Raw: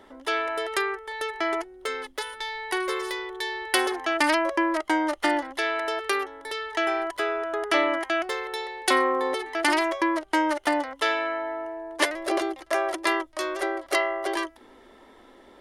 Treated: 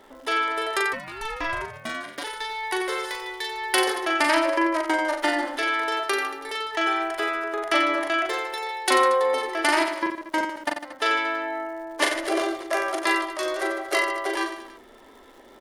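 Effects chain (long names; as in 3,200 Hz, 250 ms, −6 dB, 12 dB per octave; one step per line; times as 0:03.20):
mains-hum notches 50/100/150/200/250/300/350 Hz
0:09.84–0:11.02: output level in coarse steps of 22 dB
reverse bouncing-ball delay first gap 40 ms, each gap 1.25×, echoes 5
surface crackle 180 per second −44 dBFS
0:00.92–0:02.23: ring modulation 680 Hz → 130 Hz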